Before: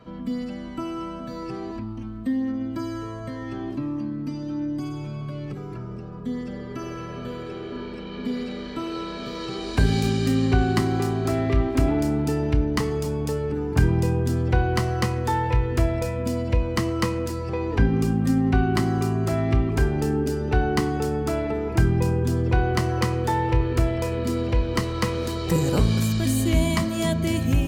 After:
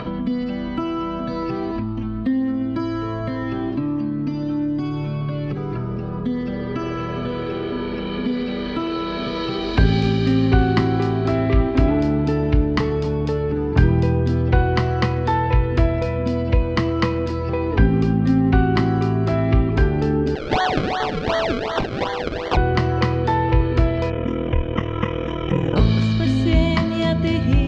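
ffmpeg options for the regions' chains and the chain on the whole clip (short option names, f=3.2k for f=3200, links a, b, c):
-filter_complex "[0:a]asettb=1/sr,asplit=3[a][b][c];[a]atrim=end=20.354[d];[b]atrim=start=20.35:end=22.57,asetpts=PTS-STARTPTS,afade=t=in:d=0.004:c=qsin,afade=t=out:st=2.216:d=0.004:c=qsin,highpass=f=620:w=0.5412,highpass=f=620:w=1.3066,acrusher=samples=33:mix=1:aa=0.000001:lfo=1:lforange=33:lforate=2.7,acontrast=70[e];[c]atrim=start=22.566[f];[d][e]acrossfade=d=0.004:c1=hsin:c2=qsin[g];[g][f]acrossfade=d=0.004:c1=qsin:c2=hsin,asettb=1/sr,asplit=3[h][i][j];[h]atrim=end=24.104[k];[i]atrim=start=24.1:end=25.76,asetpts=PTS-STARTPTS,afade=t=in:d=0.004:c=qsin,afade=t=out:st=1.656:d=0.004:c=qsin,highshelf=f=6k:t=q:w=1.5:g=-8.5,aeval=exprs='val(0)*sin(2*PI*20*n/s)':c=same,asuperstop=centerf=4400:order=8:qfactor=2.1[l];[j]atrim=start=25.756[m];[k][l]acrossfade=d=0.004:c1=hsin:c2=qsin[n];[n][m]acrossfade=d=0.004:c1=qsin:c2=hsin,lowpass=f=4.5k:w=0.5412,lowpass=f=4.5k:w=1.3066,acompressor=mode=upward:threshold=-22dB:ratio=2.5,volume=4dB"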